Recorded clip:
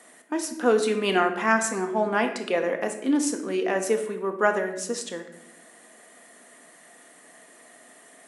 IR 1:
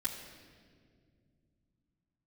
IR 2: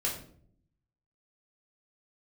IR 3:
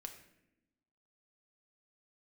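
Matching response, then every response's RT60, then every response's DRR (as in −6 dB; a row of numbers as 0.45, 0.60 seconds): 3; 2.1, 0.60, 0.85 seconds; −8.0, −4.0, 4.5 decibels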